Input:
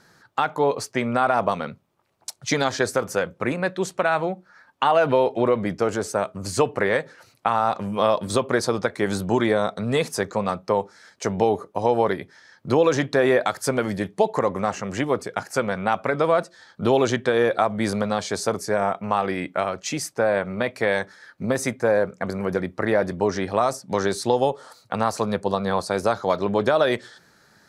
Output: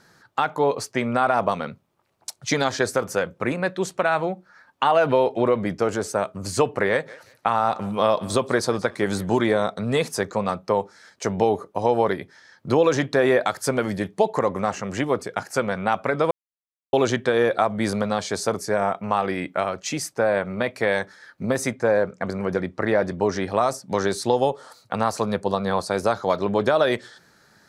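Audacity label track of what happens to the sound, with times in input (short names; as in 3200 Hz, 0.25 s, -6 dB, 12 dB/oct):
6.900000	9.640000	thinning echo 0.179 s, feedback 29%, high-pass 540 Hz, level -19 dB
16.310000	16.930000	mute
21.680000	23.250000	LPF 8500 Hz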